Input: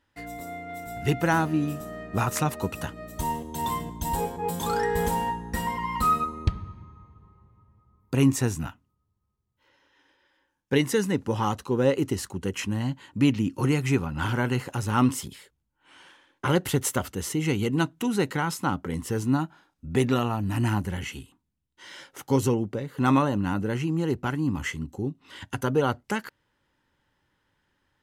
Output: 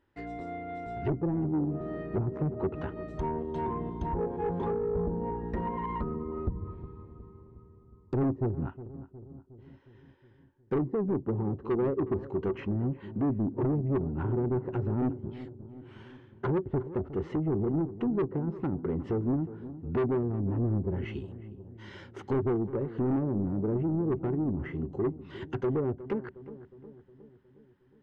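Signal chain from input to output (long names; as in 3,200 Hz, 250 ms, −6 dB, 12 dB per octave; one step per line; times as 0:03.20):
treble cut that deepens with the level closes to 350 Hz, closed at −22 dBFS
parametric band 380 Hz +14 dB 0.27 octaves
soft clipping −23 dBFS, distortion −8 dB
head-to-tape spacing loss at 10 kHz 26 dB
feedback echo with a low-pass in the loop 362 ms, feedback 62%, low-pass 970 Hz, level −14 dB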